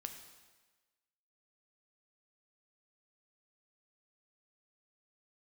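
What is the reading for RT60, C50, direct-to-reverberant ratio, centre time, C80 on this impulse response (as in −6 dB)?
1.3 s, 8.0 dB, 5.0 dB, 24 ms, 9.5 dB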